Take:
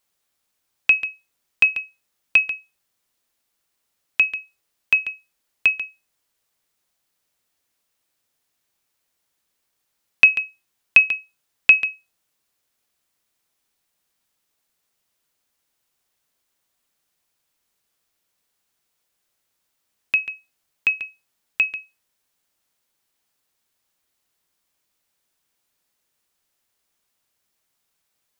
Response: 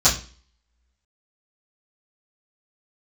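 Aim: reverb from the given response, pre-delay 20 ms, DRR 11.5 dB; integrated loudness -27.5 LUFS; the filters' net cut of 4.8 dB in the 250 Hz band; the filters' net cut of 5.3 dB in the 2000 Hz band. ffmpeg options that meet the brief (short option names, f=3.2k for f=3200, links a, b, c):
-filter_complex "[0:a]equalizer=f=250:t=o:g=-6.5,equalizer=f=2k:t=o:g=-8,asplit=2[a][b];[1:a]atrim=start_sample=2205,adelay=20[c];[b][c]afir=irnorm=-1:irlink=0,volume=-29.5dB[d];[a][d]amix=inputs=2:normalize=0,volume=-4dB"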